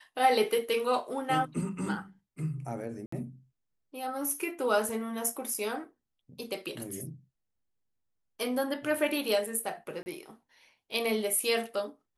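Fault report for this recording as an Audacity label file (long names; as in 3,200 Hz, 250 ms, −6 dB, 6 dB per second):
3.060000	3.120000	drop-out 64 ms
5.540000	5.540000	drop-out 4.1 ms
10.030000	10.060000	drop-out 30 ms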